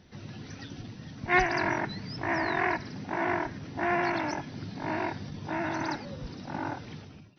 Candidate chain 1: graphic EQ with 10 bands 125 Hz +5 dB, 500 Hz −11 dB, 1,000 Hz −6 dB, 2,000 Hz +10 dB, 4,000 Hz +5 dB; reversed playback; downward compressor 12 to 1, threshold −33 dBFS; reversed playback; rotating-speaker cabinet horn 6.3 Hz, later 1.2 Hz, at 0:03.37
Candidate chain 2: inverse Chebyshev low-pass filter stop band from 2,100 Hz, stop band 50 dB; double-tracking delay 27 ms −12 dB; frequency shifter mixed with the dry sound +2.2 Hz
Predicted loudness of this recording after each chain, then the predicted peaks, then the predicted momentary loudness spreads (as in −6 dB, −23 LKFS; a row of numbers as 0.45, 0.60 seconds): −39.5, −38.0 LKFS; −22.0, −19.0 dBFS; 5, 13 LU